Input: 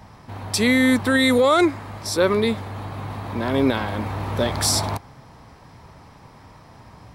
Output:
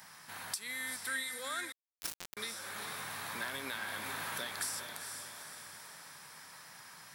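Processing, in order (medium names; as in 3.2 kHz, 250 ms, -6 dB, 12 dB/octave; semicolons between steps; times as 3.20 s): differentiator; compression 12:1, threshold -45 dBFS, peak gain reduction 26.5 dB; fifteen-band graphic EQ 160 Hz +11 dB, 1.6 kHz +9 dB, 10 kHz +4 dB; 2.95–4.02 s: modulation noise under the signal 25 dB; on a send: echo that smears into a reverb 453 ms, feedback 53%, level -6 dB; 1.72–2.37 s: on the sum: word length cut 6-bit, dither none; trim +5 dB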